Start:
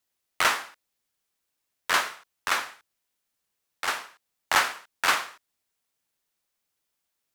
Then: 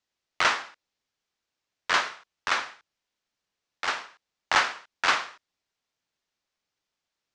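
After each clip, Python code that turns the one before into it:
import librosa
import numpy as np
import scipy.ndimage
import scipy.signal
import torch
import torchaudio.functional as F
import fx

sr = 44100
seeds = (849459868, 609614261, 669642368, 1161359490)

y = scipy.signal.sosfilt(scipy.signal.butter(4, 6300.0, 'lowpass', fs=sr, output='sos'), x)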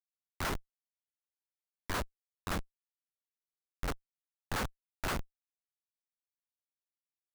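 y = fx.high_shelf(x, sr, hz=9700.0, db=6.5)
y = fx.schmitt(y, sr, flips_db=-21.5)
y = F.gain(torch.from_numpy(y), -1.0).numpy()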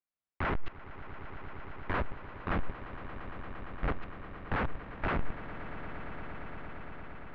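y = fx.halfwave_hold(x, sr)
y = scipy.signal.sosfilt(scipy.signal.butter(4, 2500.0, 'lowpass', fs=sr, output='sos'), y)
y = fx.echo_swell(y, sr, ms=115, loudest=8, wet_db=-16.5)
y = F.gain(torch.from_numpy(y), 3.0).numpy()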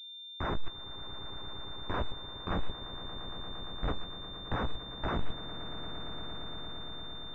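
y = fx.doubler(x, sr, ms=17.0, db=-11.0)
y = fx.pwm(y, sr, carrier_hz=3600.0)
y = F.gain(torch.from_numpy(y), -1.0).numpy()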